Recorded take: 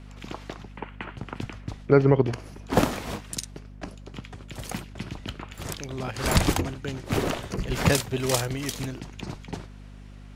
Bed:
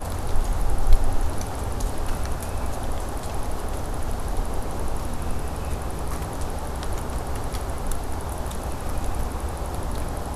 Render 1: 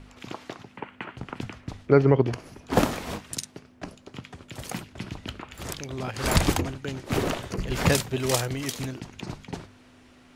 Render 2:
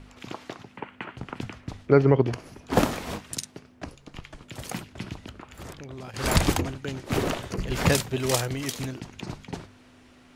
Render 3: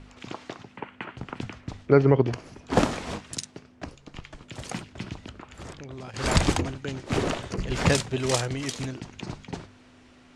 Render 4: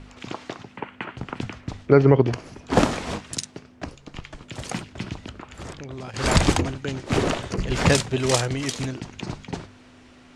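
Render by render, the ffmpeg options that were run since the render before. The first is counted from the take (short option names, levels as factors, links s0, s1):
-af "bandreject=f=50:t=h:w=4,bandreject=f=100:t=h:w=4,bandreject=f=150:t=h:w=4,bandreject=f=200:t=h:w=4"
-filter_complex "[0:a]asettb=1/sr,asplit=3[s0][s1][s2];[s0]atrim=end=3.854[s3];[s1]atrim=start=3.85:end=4.42,asetpts=PTS-STARTPTS,afade=t=in:d=0.004:c=qsin,afade=t=out:st=0.566:d=0.004:c=qsin,afreqshift=-110[s4];[s2]atrim=start=4.416[s5];[s3][s4]acrossfade=d=0.004:c1=hsin:c2=qsin[s6];[s6][s5]acrossfade=d=0.004:c1=qsin:c2=hsin,asettb=1/sr,asplit=3[s7][s8][s9];[s7]atrim=end=5.134[s10];[s8]atrim=start=5.13:end=6.14,asetpts=PTS-STARTPTS,afade=t=in:d=0.004:c=qsin,afade=t=out:st=1.006:d=0.004:c=qsin,acrossover=split=2000|4300[s11][s12][s13];[s11]acompressor=threshold=0.0126:ratio=4[s14];[s12]acompressor=threshold=0.00158:ratio=4[s15];[s13]acompressor=threshold=0.00224:ratio=4[s16];[s14][s15][s16]amix=inputs=3:normalize=0[s17];[s9]atrim=start=6.136[s18];[s10][s17]acrossfade=d=0.004:c1=hsin:c2=qsin[s19];[s19][s18]acrossfade=d=0.004:c1=qsin:c2=hsin"
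-af "lowpass=f=9000:w=0.5412,lowpass=f=9000:w=1.3066"
-af "volume=1.58,alimiter=limit=0.708:level=0:latency=1"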